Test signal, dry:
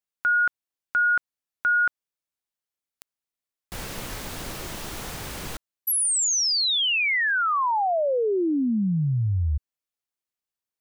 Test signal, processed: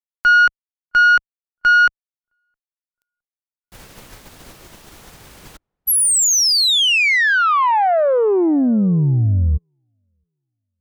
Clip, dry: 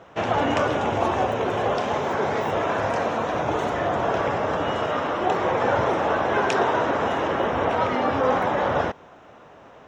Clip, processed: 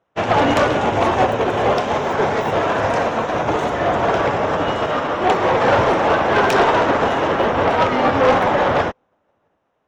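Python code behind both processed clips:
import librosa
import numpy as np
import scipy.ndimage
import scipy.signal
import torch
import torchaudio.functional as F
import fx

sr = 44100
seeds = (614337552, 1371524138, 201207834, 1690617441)

y = fx.cheby_harmonics(x, sr, harmonics=(5, 8), levels_db=(-11, -24), full_scale_db=-8.0)
y = fx.echo_filtered(y, sr, ms=664, feedback_pct=29, hz=980.0, wet_db=-20.5)
y = fx.upward_expand(y, sr, threshold_db=-37.0, expansion=2.5)
y = y * librosa.db_to_amplitude(4.0)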